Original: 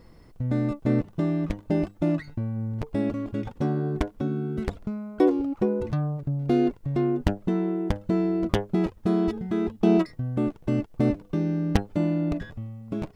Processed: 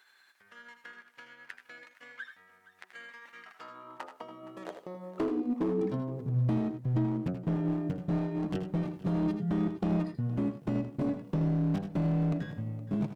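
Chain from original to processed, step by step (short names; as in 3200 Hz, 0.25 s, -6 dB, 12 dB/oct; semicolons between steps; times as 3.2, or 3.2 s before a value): gliding pitch shift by -4 st ending unshifted; compressor 4:1, threshold -30 dBFS, peak gain reduction 12.5 dB; high-pass sweep 1700 Hz -> 150 Hz, 3.3–6.38; overloaded stage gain 25.5 dB; tapped delay 81/97/468 ms -10/-15/-17.5 dB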